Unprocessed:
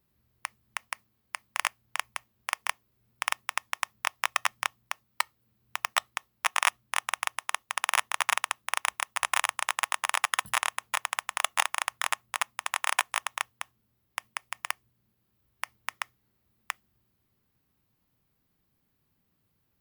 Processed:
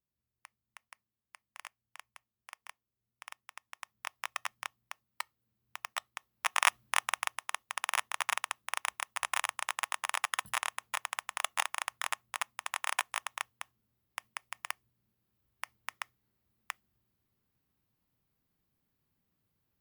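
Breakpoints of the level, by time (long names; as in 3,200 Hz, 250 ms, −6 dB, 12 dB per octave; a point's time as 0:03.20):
0:03.59 −19 dB
0:04.11 −10.5 dB
0:06.12 −10.5 dB
0:06.82 +1.5 dB
0:07.44 −6 dB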